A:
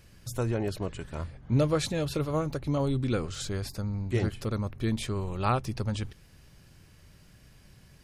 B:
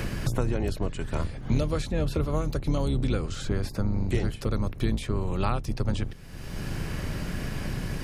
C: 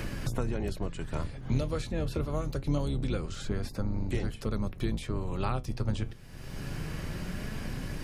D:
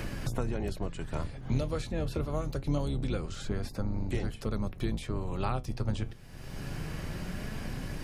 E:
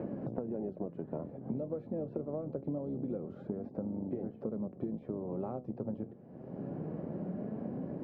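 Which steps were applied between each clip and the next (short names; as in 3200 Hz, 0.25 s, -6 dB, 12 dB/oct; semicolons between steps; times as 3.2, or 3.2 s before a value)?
octaver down 2 oct, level +2 dB; three-band squash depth 100%
flange 0.25 Hz, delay 3.2 ms, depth 5.9 ms, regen +74%
bell 740 Hz +2.5 dB 0.55 oct; gain -1 dB
Chebyshev band-pass 200–600 Hz, order 2; compressor, threshold -39 dBFS, peak gain reduction 9.5 dB; gain +5.5 dB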